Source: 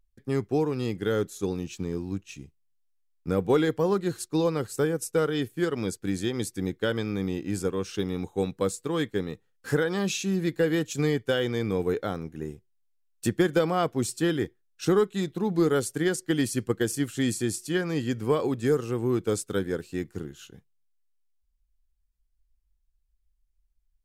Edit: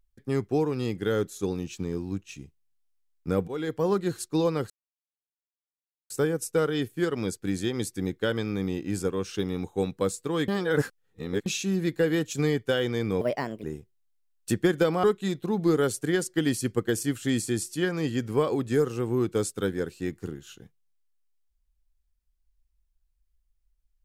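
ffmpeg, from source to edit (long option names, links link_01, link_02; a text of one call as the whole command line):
ffmpeg -i in.wav -filter_complex "[0:a]asplit=8[link_01][link_02][link_03][link_04][link_05][link_06][link_07][link_08];[link_01]atrim=end=3.48,asetpts=PTS-STARTPTS,afade=type=out:start_time=3.476:duration=0.004:curve=hsin:silence=0.11885[link_09];[link_02]atrim=start=3.48:end=4.7,asetpts=PTS-STARTPTS,afade=type=in:duration=0.41:silence=0.11885,afade=type=out:start_time=1.216:duration=0.004:curve=hsin,apad=pad_dur=1.4[link_10];[link_03]atrim=start=4.7:end=9.082,asetpts=PTS-STARTPTS,afade=type=in:duration=0.004:curve=hsin[link_11];[link_04]atrim=start=9.078:end=10.062,asetpts=PTS-STARTPTS,areverse[link_12];[link_05]atrim=start=10.058:end=11.814[link_13];[link_06]atrim=start=11.81:end=12.39,asetpts=PTS-STARTPTS,asetrate=59976,aresample=44100,atrim=end_sample=18807,asetpts=PTS-STARTPTS[link_14];[link_07]atrim=start=12.386:end=13.792[link_15];[link_08]atrim=start=14.958[link_16];[link_09][link_10][link_11]concat=n=3:v=0:a=1[link_17];[link_17][link_12]acrossfade=duration=0.004:curve1=hsin:curve2=hsin[link_18];[link_18][link_13]acrossfade=duration=0.004:curve1=hsin:curve2=hsin[link_19];[link_19][link_14]acrossfade=duration=0.004:curve1=hsin:curve2=hsin[link_20];[link_20][link_15]acrossfade=duration=0.004:curve1=hsin:curve2=hsin[link_21];[link_21][link_16]acrossfade=duration=0.004:curve1=hsin:curve2=hsin" out.wav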